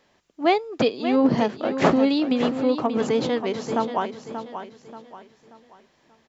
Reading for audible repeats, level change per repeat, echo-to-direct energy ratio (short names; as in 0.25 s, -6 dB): 3, -8.5 dB, -9.0 dB